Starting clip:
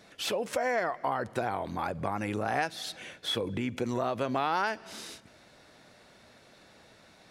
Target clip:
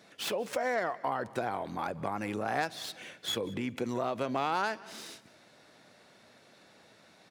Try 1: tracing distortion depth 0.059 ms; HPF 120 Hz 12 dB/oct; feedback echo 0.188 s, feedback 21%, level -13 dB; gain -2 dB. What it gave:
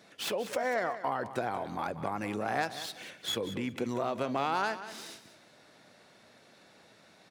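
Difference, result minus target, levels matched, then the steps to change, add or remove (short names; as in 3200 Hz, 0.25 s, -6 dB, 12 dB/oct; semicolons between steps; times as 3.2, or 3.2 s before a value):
echo-to-direct +9.5 dB
change: feedback echo 0.188 s, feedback 21%, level -22.5 dB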